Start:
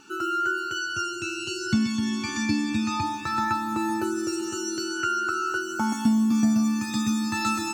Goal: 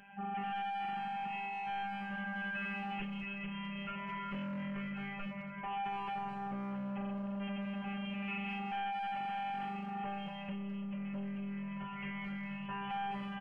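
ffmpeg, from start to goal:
-filter_complex "[0:a]highshelf=f=4.2k:g=10.5,asplit=2[a][b];[b]asoftclip=type=tanh:threshold=-25dB,volume=-11dB[c];[a][c]amix=inputs=2:normalize=0,afftfilt=real='hypot(re,im)*cos(PI*b)':imag='0':win_size=512:overlap=0.75,aresample=11025,volume=31.5dB,asoftclip=hard,volume=-31.5dB,aresample=44100,asplit=2[d][e];[e]adelay=16,volume=-14dB[f];[d][f]amix=inputs=2:normalize=0,asplit=2[g][h];[h]adelay=120,highpass=300,lowpass=3.4k,asoftclip=type=hard:threshold=-33.5dB,volume=-12dB[i];[g][i]amix=inputs=2:normalize=0,asetrate=25442,aresample=44100,volume=-5.5dB"

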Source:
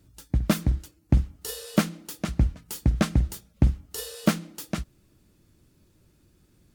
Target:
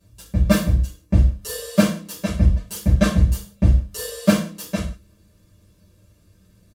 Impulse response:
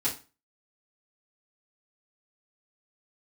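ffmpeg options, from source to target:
-filter_complex "[0:a]aecho=1:1:1.8:0.52[a];[1:a]atrim=start_sample=2205,atrim=end_sample=6174,asetrate=30870,aresample=44100[b];[a][b]afir=irnorm=-1:irlink=0,volume=-5dB"

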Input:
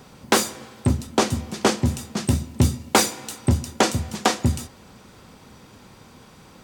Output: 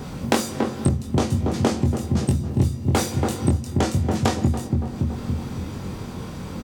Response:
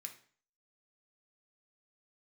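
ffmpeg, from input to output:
-filter_complex "[0:a]lowshelf=f=440:g=10.5,asplit=2[a][b];[b]adelay=282,lowpass=f=880:p=1,volume=-7dB,asplit=2[c][d];[d]adelay=282,lowpass=f=880:p=1,volume=0.45,asplit=2[e][f];[f]adelay=282,lowpass=f=880:p=1,volume=0.45,asplit=2[g][h];[h]adelay=282,lowpass=f=880:p=1,volume=0.45,asplit=2[i][j];[j]adelay=282,lowpass=f=880:p=1,volume=0.45[k];[c][e][g][i][k]amix=inputs=5:normalize=0[l];[a][l]amix=inputs=2:normalize=0,acompressor=threshold=-26dB:ratio=5,asplit=2[m][n];[n]adelay=22,volume=-3.5dB[o];[m][o]amix=inputs=2:normalize=0,volume=6dB"

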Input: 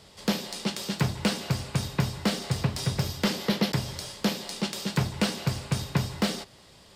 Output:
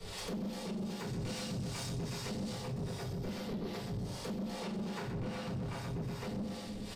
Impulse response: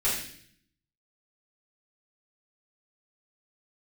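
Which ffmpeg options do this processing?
-filter_complex "[0:a]asettb=1/sr,asplit=3[a][b][c];[a]atrim=end=4.444[d];[b]atrim=start=4.44:end=5.74,asetpts=PTS-STARTPTS,afade=t=in:d=0.004:c=qsin,afade=t=out:st=1.296:d=0.004:c=qsin,equalizer=f=1.5k:w=0.38:g=7[e];[c]atrim=start=5.736[f];[d][e]acrossfade=d=0.004:c1=hsin:c2=qsin[g];[g][f]acrossfade=d=0.004:c1=qsin:c2=hsin,aecho=1:1:126|252|378|504:0.562|0.174|0.054|0.0168,acrossover=split=170|950[h][i][j];[h]acompressor=threshold=-34dB:ratio=4[k];[i]acompressor=threshold=-36dB:ratio=4[l];[j]acompressor=threshold=-50dB:ratio=4[m];[k][l][m]amix=inputs=3:normalize=0,asettb=1/sr,asplit=3[n][o][p];[n]atrim=end=1.054[q];[o]atrim=start=1.05:end=2.49,asetpts=PTS-STARTPTS,afade=t=in:d=0.004:c=qsin,afade=t=out:st=1.436:d=0.004:c=qsin,equalizer=f=6.7k:w=0.46:g=10.5[r];[p]atrim=start=2.486[s];[q][r]acrossfade=d=0.004:c1=hsin:c2=qsin[t];[t][s]acrossfade=d=0.004:c1=qsin:c2=hsin[u];[1:a]atrim=start_sample=2205[v];[u][v]afir=irnorm=-1:irlink=0,acompressor=threshold=-42dB:ratio=2.5,acrossover=split=510[w][x];[w]aeval=exprs='val(0)*(1-0.7/2+0.7/2*cos(2*PI*2.5*n/s))':c=same[y];[x]aeval=exprs='val(0)*(1-0.7/2-0.7/2*cos(2*PI*2.5*n/s))':c=same[z];[y][z]amix=inputs=2:normalize=0,asoftclip=type=tanh:threshold=-38.5dB,volume=5dB"

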